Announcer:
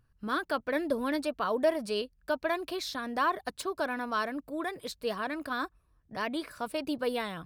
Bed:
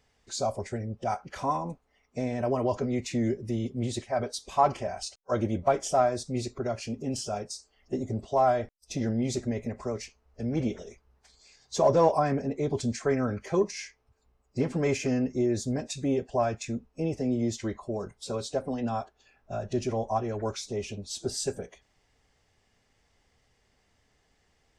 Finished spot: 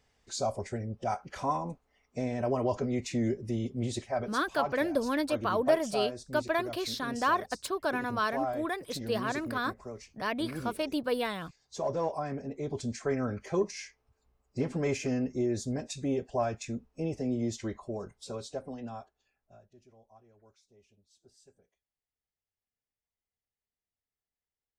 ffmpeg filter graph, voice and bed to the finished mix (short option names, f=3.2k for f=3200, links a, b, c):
-filter_complex "[0:a]adelay=4050,volume=1dB[a];[1:a]volume=4.5dB,afade=t=out:st=4.09:d=0.34:silence=0.398107,afade=t=in:st=12.16:d=1.12:silence=0.473151,afade=t=out:st=17.78:d=1.92:silence=0.0446684[b];[a][b]amix=inputs=2:normalize=0"